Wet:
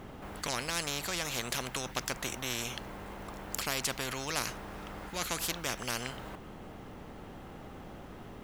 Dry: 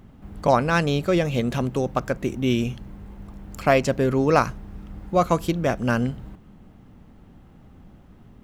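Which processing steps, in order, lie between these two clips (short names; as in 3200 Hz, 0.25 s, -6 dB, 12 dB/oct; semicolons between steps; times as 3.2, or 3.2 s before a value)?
spectral compressor 4:1; gain -7.5 dB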